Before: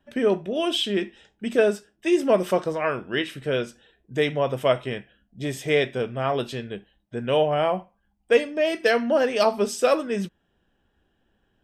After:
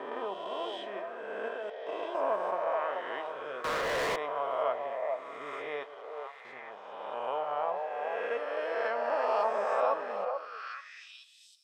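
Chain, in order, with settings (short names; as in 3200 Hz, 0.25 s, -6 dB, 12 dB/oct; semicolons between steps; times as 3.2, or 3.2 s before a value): spectral swells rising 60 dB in 2.26 s; 5.83–6.45 passive tone stack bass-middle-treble 10-0-10; on a send at -14 dB: reverb RT60 1.9 s, pre-delay 4 ms; 1.48–2.15 on the sum: level quantiser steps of 20 dB; low shelf 170 Hz -7 dB; crossover distortion -38 dBFS; delay with a stepping band-pass 0.435 s, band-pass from 630 Hz, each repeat 1.4 oct, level -1.5 dB; band-pass sweep 960 Hz -> 4400 Hz, 10.27–11.47; 3.64–4.16 sample leveller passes 5; gain -6 dB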